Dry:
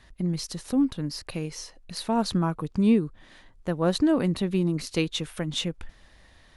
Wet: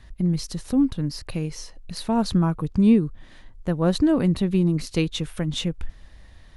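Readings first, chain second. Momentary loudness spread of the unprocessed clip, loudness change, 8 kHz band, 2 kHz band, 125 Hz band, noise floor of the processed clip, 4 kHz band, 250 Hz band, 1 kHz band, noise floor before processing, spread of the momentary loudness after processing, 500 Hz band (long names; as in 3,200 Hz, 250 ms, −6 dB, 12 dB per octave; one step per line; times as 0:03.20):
13 LU, +3.5 dB, 0.0 dB, 0.0 dB, +5.5 dB, −49 dBFS, 0.0 dB, +4.0 dB, +0.5 dB, −56 dBFS, 14 LU, +1.5 dB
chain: low-shelf EQ 170 Hz +11 dB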